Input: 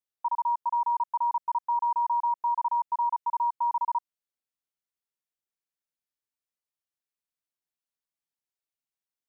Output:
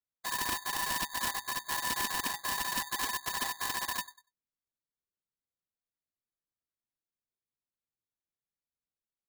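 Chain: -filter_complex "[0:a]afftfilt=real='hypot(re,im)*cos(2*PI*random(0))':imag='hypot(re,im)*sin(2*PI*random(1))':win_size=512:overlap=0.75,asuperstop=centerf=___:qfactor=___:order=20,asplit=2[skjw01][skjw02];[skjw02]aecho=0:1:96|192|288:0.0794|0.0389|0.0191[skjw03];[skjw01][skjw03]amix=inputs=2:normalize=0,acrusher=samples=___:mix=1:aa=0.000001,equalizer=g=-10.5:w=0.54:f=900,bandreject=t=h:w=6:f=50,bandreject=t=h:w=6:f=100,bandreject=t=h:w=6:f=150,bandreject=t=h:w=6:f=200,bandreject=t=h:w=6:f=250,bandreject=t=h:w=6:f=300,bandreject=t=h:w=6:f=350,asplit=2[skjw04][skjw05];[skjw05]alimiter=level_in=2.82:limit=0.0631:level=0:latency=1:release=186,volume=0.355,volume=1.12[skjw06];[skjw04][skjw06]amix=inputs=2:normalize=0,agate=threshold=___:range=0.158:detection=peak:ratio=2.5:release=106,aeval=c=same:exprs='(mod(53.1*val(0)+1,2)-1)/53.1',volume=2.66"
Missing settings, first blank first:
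900, 6.4, 16, 0.00126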